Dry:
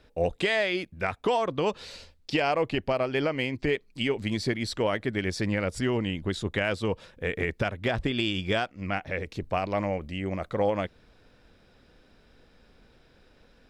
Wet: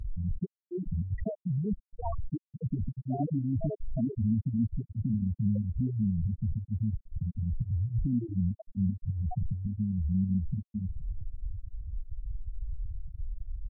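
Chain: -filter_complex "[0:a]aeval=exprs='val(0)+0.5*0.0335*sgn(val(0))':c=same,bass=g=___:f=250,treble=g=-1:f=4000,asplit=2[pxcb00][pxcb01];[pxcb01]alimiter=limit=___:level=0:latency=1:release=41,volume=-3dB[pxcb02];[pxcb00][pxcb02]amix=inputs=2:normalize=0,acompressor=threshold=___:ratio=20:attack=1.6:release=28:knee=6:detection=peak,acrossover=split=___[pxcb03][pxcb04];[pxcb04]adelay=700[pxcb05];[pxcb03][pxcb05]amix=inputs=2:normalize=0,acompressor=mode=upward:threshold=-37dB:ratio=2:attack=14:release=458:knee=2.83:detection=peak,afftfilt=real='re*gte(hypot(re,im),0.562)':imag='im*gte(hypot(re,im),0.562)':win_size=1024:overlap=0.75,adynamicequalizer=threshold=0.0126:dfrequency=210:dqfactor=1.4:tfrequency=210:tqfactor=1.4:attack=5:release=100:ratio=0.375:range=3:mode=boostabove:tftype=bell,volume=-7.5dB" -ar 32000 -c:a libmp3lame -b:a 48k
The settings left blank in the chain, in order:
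11, -14dB, -17dB, 480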